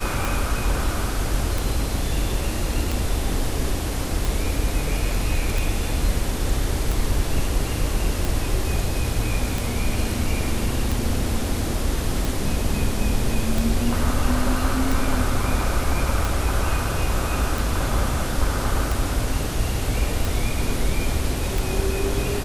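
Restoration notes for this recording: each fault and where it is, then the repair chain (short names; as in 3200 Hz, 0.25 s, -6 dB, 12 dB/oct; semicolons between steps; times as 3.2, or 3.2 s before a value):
tick 45 rpm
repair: de-click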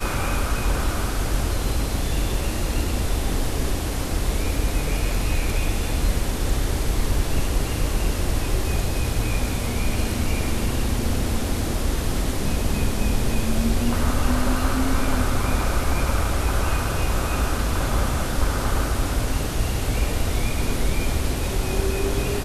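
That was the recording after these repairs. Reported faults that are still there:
none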